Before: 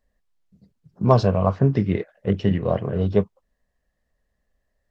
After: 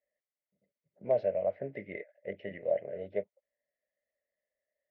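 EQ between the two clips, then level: two resonant band-passes 1.1 kHz, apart 1.8 oct; distance through air 210 m; band-stop 1.4 kHz, Q 29; -1.5 dB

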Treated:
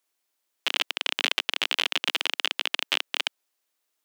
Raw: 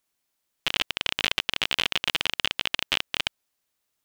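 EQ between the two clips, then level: high-pass 280 Hz 24 dB/octave; 0.0 dB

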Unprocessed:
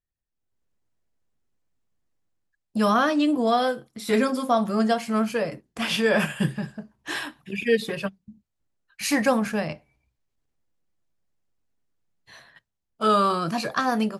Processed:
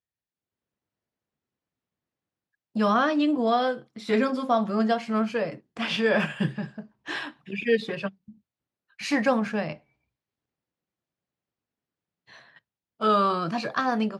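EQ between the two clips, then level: band-pass 110–4500 Hz; -1.5 dB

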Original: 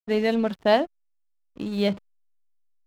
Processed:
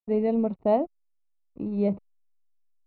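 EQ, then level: boxcar filter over 27 samples; distance through air 170 m; 0.0 dB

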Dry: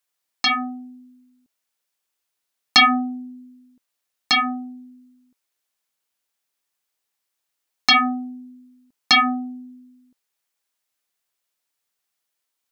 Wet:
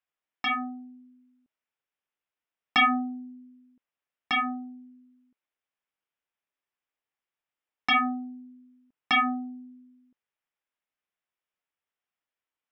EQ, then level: Savitzky-Golay filter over 25 samples; -6.0 dB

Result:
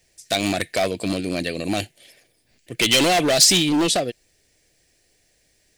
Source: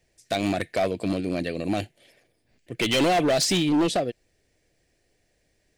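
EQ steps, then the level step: treble shelf 2.7 kHz +11.5 dB; +1.5 dB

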